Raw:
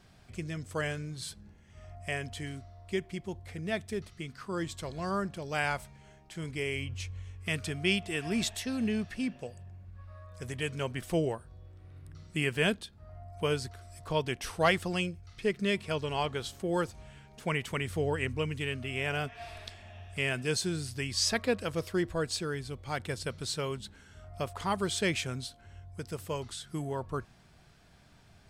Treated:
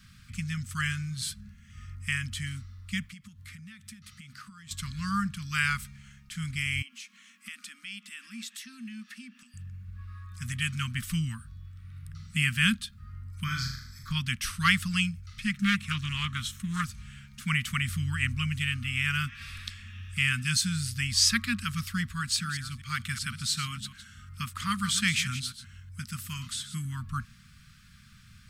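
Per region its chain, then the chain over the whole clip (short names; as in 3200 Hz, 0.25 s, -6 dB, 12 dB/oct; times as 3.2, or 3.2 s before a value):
3.08–4.71 HPF 160 Hz 6 dB/oct + compressor 20:1, threshold -46 dBFS
6.82–9.54 brick-wall FIR high-pass 200 Hz + compressor 2.5:1, threshold -50 dBFS
13.44–14.11 fixed phaser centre 2800 Hz, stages 6 + flutter echo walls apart 6.5 m, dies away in 0.63 s
15.51–16.84 notch 4700 Hz, Q 5.6 + Doppler distortion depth 0.32 ms
22.08–26.85 reverse delay 0.123 s, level -11.5 dB + low shelf 69 Hz -11.5 dB
whole clip: Chebyshev band-stop 230–1200 Hz, order 4; high shelf 11000 Hz +7 dB; gain +6 dB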